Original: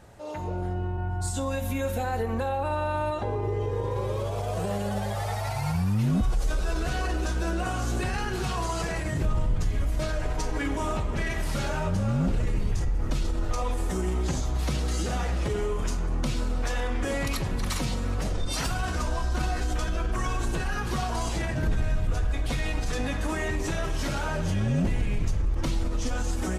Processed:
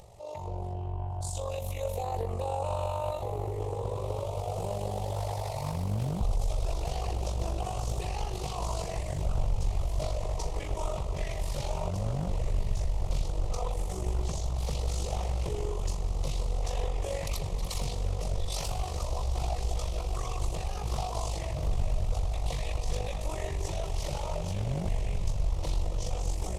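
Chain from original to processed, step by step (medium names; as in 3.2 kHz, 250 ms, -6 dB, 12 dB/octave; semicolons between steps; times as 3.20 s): echo that smears into a reverb 1406 ms, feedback 64%, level -11 dB; AM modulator 48 Hz, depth 45%; upward compressor, threshold -44 dBFS; static phaser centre 640 Hz, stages 4; loudspeaker Doppler distortion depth 0.64 ms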